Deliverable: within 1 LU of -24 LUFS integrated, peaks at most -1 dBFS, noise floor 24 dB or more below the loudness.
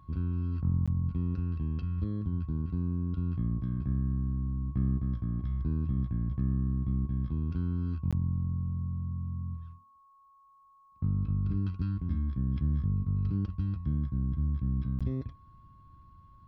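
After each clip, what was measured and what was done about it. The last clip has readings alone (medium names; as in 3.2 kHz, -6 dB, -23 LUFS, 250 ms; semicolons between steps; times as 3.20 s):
dropouts 3; longest dropout 16 ms; steady tone 1.1 kHz; tone level -58 dBFS; loudness -32.5 LUFS; peak level -18.0 dBFS; loudness target -24.0 LUFS
-> interpolate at 0.86/8.11/14.99 s, 16 ms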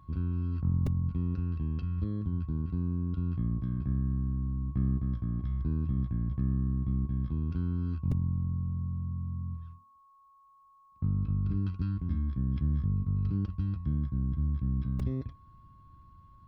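dropouts 0; steady tone 1.1 kHz; tone level -58 dBFS
-> band-stop 1.1 kHz, Q 30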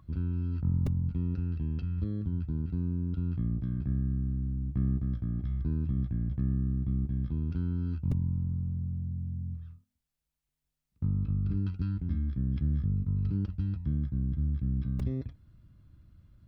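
steady tone not found; loudness -32.5 LUFS; peak level -18.0 dBFS; loudness target -24.0 LUFS
-> trim +8.5 dB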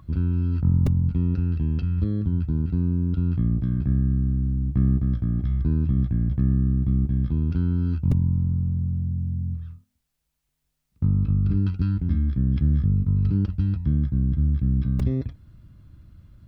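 loudness -24.0 LUFS; peak level -9.5 dBFS; noise floor -76 dBFS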